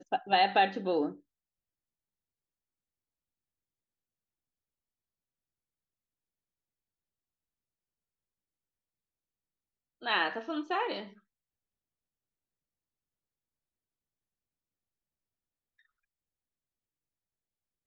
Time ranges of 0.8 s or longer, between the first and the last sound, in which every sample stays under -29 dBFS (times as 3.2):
1.08–10.06